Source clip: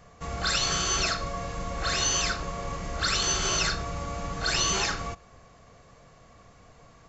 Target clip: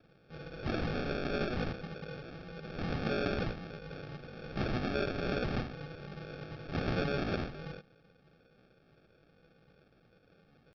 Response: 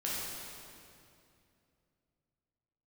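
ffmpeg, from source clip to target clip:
-af "highpass=frequency=630:width=0.5412,highpass=frequency=630:width=1.3066,flanger=delay=2.3:depth=8.2:regen=-33:speed=1.8:shape=sinusoidal,acrusher=samples=33:mix=1:aa=0.000001,equalizer=frequency=2400:width=1:gain=2.5,atempo=0.89,aresample=16000,aresample=44100,asetrate=32667,aresample=44100,volume=-2.5dB"

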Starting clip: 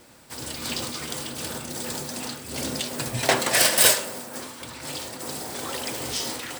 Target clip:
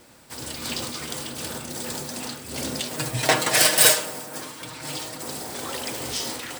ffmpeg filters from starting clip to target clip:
ffmpeg -i in.wav -filter_complex "[0:a]asettb=1/sr,asplit=3[link_01][link_02][link_03];[link_01]atrim=end=2.904[link_04];[link_02]atrim=start=2.9:end=5.23,asetpts=PTS-STARTPTS,afade=type=in:duration=0.004:curve=qsin,afade=type=out:start_time=2.326:duration=0.004:curve=qsin,aecho=1:1:6.5:0.58,atrim=end_sample=102753[link_05];[link_03]atrim=start=5.226[link_06];[link_04][link_05]acrossfade=duration=0.004:curve1=hsin:curve2=qsin[link_07];[link_07][link_06]acrossfade=duration=0.004:curve1=qsin:curve2=hsin" out.wav

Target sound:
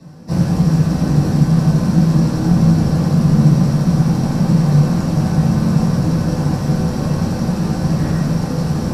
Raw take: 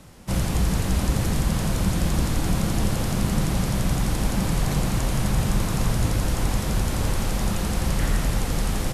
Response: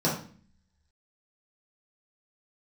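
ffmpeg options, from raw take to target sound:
-filter_complex "[1:a]atrim=start_sample=2205[link_01];[0:a][link_01]afir=irnorm=-1:irlink=0,volume=-9.5dB"

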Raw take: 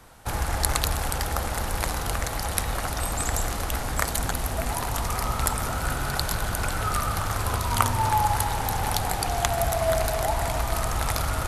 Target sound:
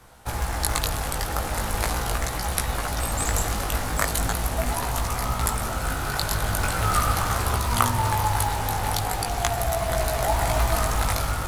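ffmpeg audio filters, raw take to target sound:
ffmpeg -i in.wav -af "dynaudnorm=framelen=200:gausssize=7:maxgain=6.5dB,flanger=delay=16:depth=3.7:speed=0.4,acrusher=bits=6:mode=log:mix=0:aa=0.000001,volume=2.5dB" out.wav

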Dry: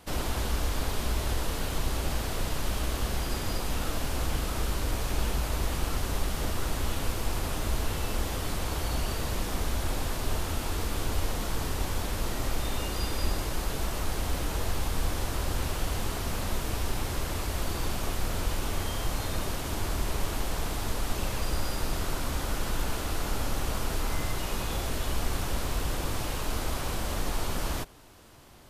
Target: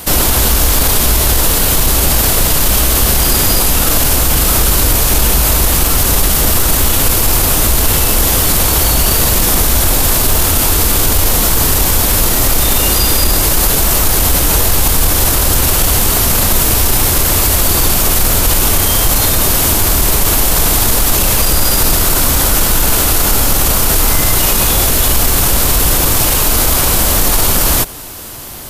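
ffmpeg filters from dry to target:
ffmpeg -i in.wav -af "aemphasis=mode=production:type=50fm,asoftclip=type=tanh:threshold=-14.5dB,alimiter=level_in=22dB:limit=-1dB:release=50:level=0:latency=1,volume=-1dB" out.wav

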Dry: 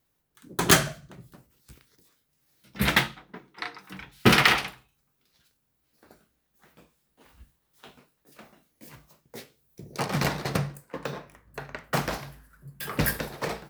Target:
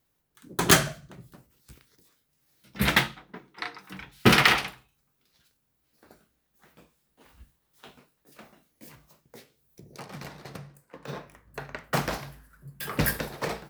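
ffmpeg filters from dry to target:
ffmpeg -i in.wav -filter_complex "[0:a]asplit=3[link_01][link_02][link_03];[link_01]afade=type=out:start_time=8.91:duration=0.02[link_04];[link_02]acompressor=threshold=-51dB:ratio=2,afade=type=in:start_time=8.91:duration=0.02,afade=type=out:start_time=11.07:duration=0.02[link_05];[link_03]afade=type=in:start_time=11.07:duration=0.02[link_06];[link_04][link_05][link_06]amix=inputs=3:normalize=0" out.wav

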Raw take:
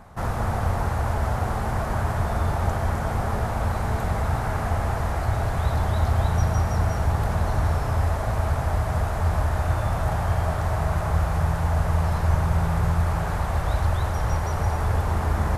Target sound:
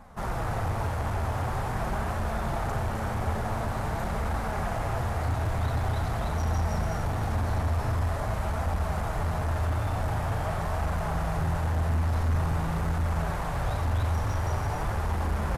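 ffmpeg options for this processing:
ffmpeg -i in.wav -af "flanger=delay=3.5:depth=7.5:regen=-23:speed=0.46:shape=triangular,volume=25.5dB,asoftclip=hard,volume=-25.5dB,aecho=1:1:37.9|87.46|291.5:0.282|0.282|0.282" out.wav

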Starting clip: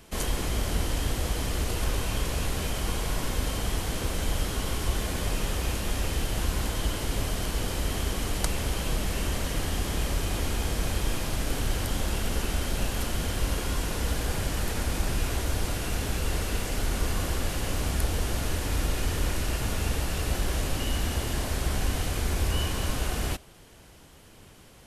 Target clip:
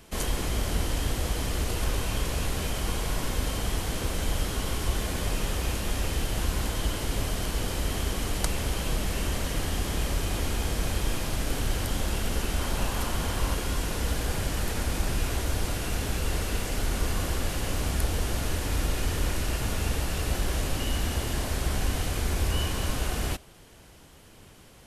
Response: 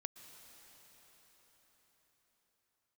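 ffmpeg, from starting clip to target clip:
-filter_complex "[0:a]asettb=1/sr,asplit=3[link_01][link_02][link_03];[link_01]atrim=end=12.594[link_04];[link_02]atrim=start=12.59:end=13.54,asetpts=PTS-STARTPTS,afade=type=in:duration=0.004:curve=qsin,afade=type=out:start_time=0.946:duration=0.004:curve=qsin,equalizer=frequency=1000:width_type=o:width=0.72:gain=6.5[link_05];[link_03]atrim=start=13.536[link_06];[link_04][link_05]acrossfade=duration=0.004:curve1=hsin:curve2=qsin[link_07];[link_07][link_06]acrossfade=duration=0.004:curve1=qsin:curve2=hsin"

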